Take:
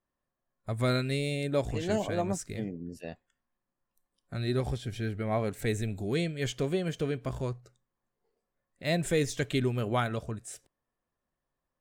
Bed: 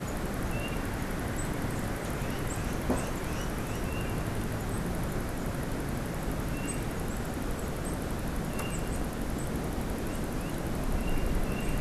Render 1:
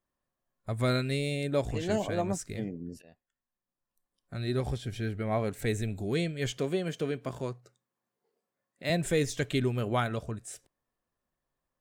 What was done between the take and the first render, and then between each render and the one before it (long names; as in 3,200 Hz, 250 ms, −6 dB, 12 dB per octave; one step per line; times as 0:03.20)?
0:03.02–0:04.75: fade in, from −18.5 dB
0:06.57–0:08.90: high-pass filter 150 Hz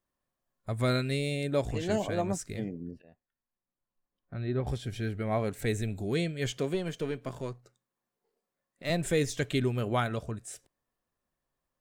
0:02.91–0:04.67: high-frequency loss of the air 410 metres
0:06.74–0:09.03: gain on one half-wave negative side −3 dB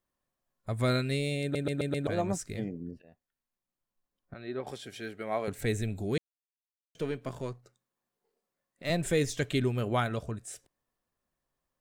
0:01.42: stutter in place 0.13 s, 5 plays
0:04.34–0:05.48: Bessel high-pass filter 390 Hz
0:06.18–0:06.95: silence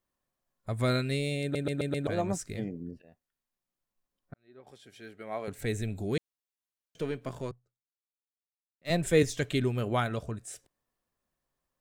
0:04.34–0:06.01: fade in
0:07.51–0:09.23: multiband upward and downward expander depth 100%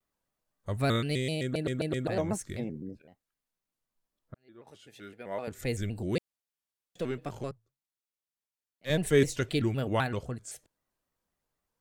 pitch modulation by a square or saw wave square 3.9 Hz, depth 160 cents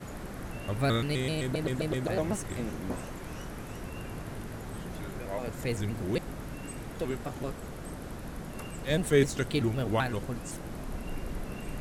mix in bed −7 dB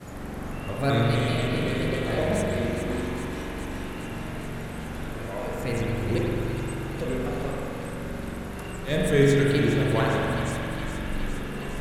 delay with a high-pass on its return 412 ms, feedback 78%, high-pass 1,500 Hz, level −8.5 dB
spring reverb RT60 3.1 s, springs 43 ms, chirp 60 ms, DRR −4.5 dB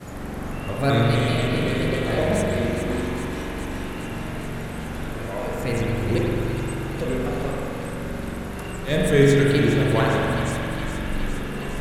level +3.5 dB